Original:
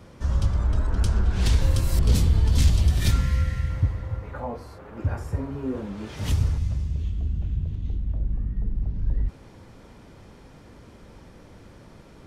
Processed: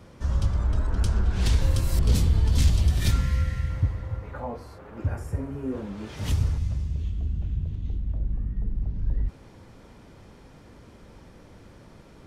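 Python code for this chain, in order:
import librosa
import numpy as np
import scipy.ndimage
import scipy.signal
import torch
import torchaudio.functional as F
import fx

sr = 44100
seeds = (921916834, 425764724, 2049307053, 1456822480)

y = fx.graphic_eq_15(x, sr, hz=(1000, 4000, 10000), db=(-4, -6, 5), at=(5.09, 5.72))
y = y * librosa.db_to_amplitude(-1.5)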